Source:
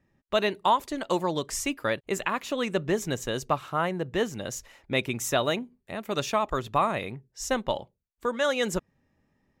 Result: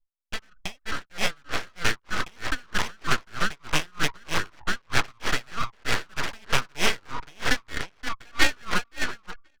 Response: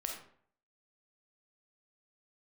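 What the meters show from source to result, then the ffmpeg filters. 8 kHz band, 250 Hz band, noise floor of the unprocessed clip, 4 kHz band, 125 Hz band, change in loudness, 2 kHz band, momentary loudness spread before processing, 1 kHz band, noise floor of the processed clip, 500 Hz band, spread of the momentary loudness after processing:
+1.0 dB, -5.5 dB, -76 dBFS, +5.0 dB, -0.5 dB, 0.0 dB, +6.5 dB, 8 LU, -3.5 dB, -66 dBFS, -9.5 dB, 11 LU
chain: -filter_complex "[0:a]asplit=2[a][b];[b]aecho=0:1:523|1046|1569:0.501|0.0952|0.0181[c];[a][c]amix=inputs=2:normalize=0,acrusher=samples=17:mix=1:aa=0.000001,acrossover=split=370|3000[d][e][f];[d]acompressor=threshold=-32dB:ratio=6[g];[g][e][f]amix=inputs=3:normalize=0,adynamicequalizer=threshold=0.00891:dfrequency=1800:dqfactor=0.7:tfrequency=1800:tqfactor=0.7:attack=5:release=100:ratio=0.375:range=2.5:mode=cutabove:tftype=bell,afreqshift=350,lowpass=f=5.4k:w=0.5412,lowpass=f=5.4k:w=1.3066,aeval=exprs='abs(val(0))':c=same,equalizer=f=170:t=o:w=2.2:g=-6.5,asplit=2[h][i];[i]alimiter=limit=-22dB:level=0:latency=1:release=81,volume=1dB[j];[h][j]amix=inputs=2:normalize=0,dynaudnorm=f=940:g=3:m=9dB,anlmdn=3.98,aeval=exprs='val(0)*pow(10,-34*(0.5-0.5*cos(2*PI*3.2*n/s))/20)':c=same"

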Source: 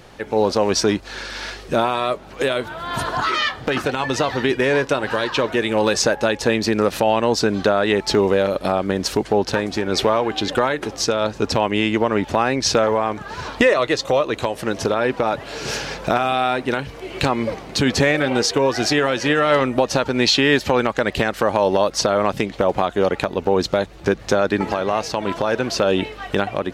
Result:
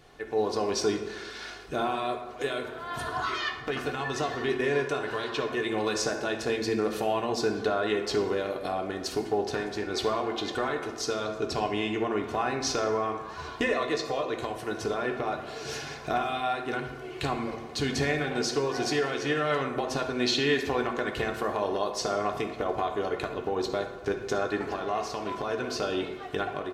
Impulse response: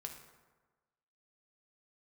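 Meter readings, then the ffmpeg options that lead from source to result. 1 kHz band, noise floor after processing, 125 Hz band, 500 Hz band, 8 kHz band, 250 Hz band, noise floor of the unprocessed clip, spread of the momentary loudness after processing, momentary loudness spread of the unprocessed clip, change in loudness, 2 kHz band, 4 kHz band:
-9.0 dB, -41 dBFS, -11.0 dB, -10.0 dB, -10.5 dB, -10.5 dB, -38 dBFS, 6 LU, 7 LU, -10.0 dB, -9.5 dB, -10.5 dB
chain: -filter_complex "[0:a]aecho=1:1:2.8:0.48[a];[1:a]atrim=start_sample=2205[b];[a][b]afir=irnorm=-1:irlink=0,volume=-7.5dB"

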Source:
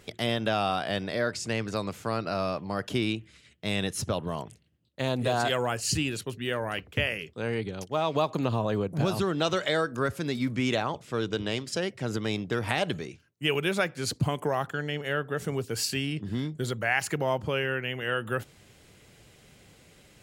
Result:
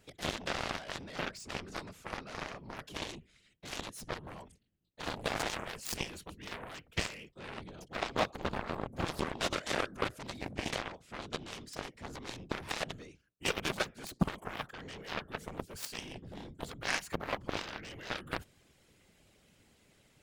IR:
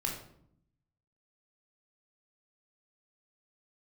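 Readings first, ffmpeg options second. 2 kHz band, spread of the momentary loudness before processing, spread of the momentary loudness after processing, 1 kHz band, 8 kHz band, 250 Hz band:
-8.0 dB, 6 LU, 11 LU, -8.0 dB, -7.5 dB, -11.5 dB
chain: -af "afftfilt=real='hypot(re,im)*cos(2*PI*random(0))':imag='hypot(re,im)*sin(2*PI*random(1))':win_size=512:overlap=0.75,aeval=exprs='0.133*(cos(1*acos(clip(val(0)/0.133,-1,1)))-cos(1*PI/2))+0.0299*(cos(7*acos(clip(val(0)/0.133,-1,1)))-cos(7*PI/2))':c=same,volume=1dB"

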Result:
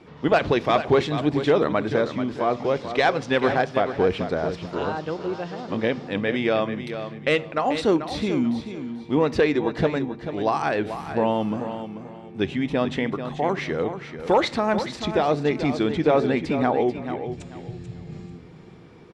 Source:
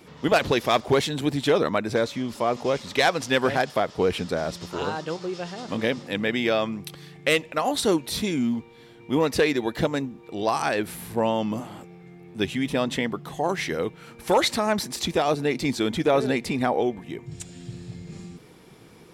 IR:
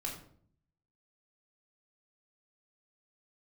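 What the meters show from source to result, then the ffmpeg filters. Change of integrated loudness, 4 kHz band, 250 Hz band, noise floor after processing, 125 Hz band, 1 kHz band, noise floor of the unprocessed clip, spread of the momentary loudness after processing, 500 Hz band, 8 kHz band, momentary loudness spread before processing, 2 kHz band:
+1.0 dB, -4.0 dB, +2.0 dB, -43 dBFS, +2.5 dB, +1.5 dB, -49 dBFS, 12 LU, +2.0 dB, under -10 dB, 15 LU, -0.5 dB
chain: -filter_complex "[0:a]lowpass=7.6k,aemphasis=mode=reproduction:type=75fm,aecho=1:1:438|876|1314:0.316|0.0791|0.0198,asplit=2[a][b];[1:a]atrim=start_sample=2205[c];[b][c]afir=irnorm=-1:irlink=0,volume=-15.5dB[d];[a][d]amix=inputs=2:normalize=0"

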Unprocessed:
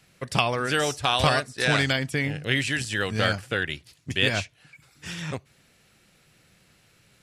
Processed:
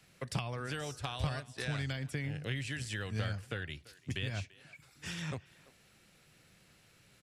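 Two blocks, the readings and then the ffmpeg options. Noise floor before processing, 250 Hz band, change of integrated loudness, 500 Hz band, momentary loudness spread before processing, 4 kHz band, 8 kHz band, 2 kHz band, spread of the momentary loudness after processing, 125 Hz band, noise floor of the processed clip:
-62 dBFS, -11.5 dB, -14.0 dB, -16.0 dB, 13 LU, -16.0 dB, -13.0 dB, -16.0 dB, 9 LU, -7.0 dB, -65 dBFS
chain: -filter_complex "[0:a]acrossover=split=140[a][b];[b]acompressor=threshold=-34dB:ratio=6[c];[a][c]amix=inputs=2:normalize=0,asplit=2[d][e];[e]adelay=340,highpass=300,lowpass=3.4k,asoftclip=type=hard:threshold=-24.5dB,volume=-20dB[f];[d][f]amix=inputs=2:normalize=0,volume=-4dB"

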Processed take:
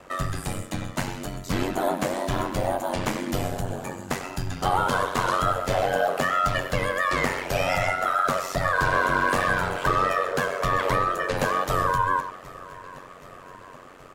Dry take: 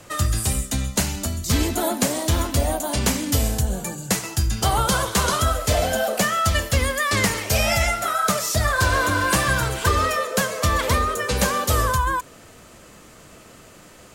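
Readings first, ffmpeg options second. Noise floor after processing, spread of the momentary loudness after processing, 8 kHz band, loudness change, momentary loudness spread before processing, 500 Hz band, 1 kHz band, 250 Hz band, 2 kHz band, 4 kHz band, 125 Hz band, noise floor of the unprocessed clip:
-45 dBFS, 14 LU, -14.0 dB, -3.5 dB, 4 LU, -1.0 dB, 0.0 dB, -4.5 dB, -2.0 dB, -9.0 dB, -8.0 dB, -47 dBFS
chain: -filter_complex "[0:a]asplit=2[a][b];[b]aecho=0:1:773|1546|2319|3092|3865:0.0944|0.0566|0.034|0.0204|0.0122[c];[a][c]amix=inputs=2:normalize=0,asplit=2[d][e];[e]highpass=f=720:p=1,volume=11dB,asoftclip=type=tanh:threshold=-4.5dB[f];[d][f]amix=inputs=2:normalize=0,lowpass=f=2.1k:p=1,volume=-6dB,equalizer=f=5.6k:w=0.39:g=-7,asplit=2[g][h];[h]adelay=100,highpass=300,lowpass=3.4k,asoftclip=type=hard:threshold=-17dB,volume=-11dB[i];[g][i]amix=inputs=2:normalize=0,aeval=exprs='val(0)*sin(2*PI*46*n/s)':c=same"

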